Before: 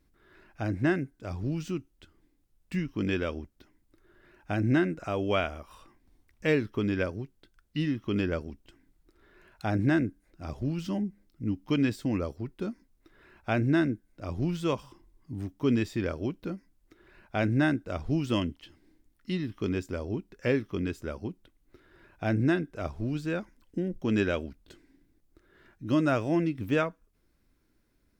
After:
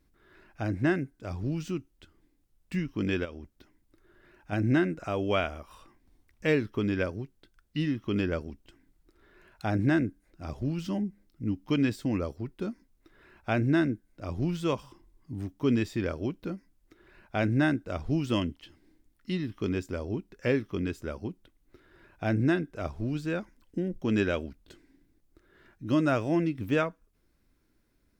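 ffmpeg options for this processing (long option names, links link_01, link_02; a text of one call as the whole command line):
ffmpeg -i in.wav -filter_complex "[0:a]asplit=3[link_01][link_02][link_03];[link_01]afade=type=out:start_time=3.24:duration=0.02[link_04];[link_02]acompressor=threshold=-39dB:ratio=4:attack=3.2:release=140:knee=1:detection=peak,afade=type=in:start_time=3.24:duration=0.02,afade=type=out:start_time=4.51:duration=0.02[link_05];[link_03]afade=type=in:start_time=4.51:duration=0.02[link_06];[link_04][link_05][link_06]amix=inputs=3:normalize=0" out.wav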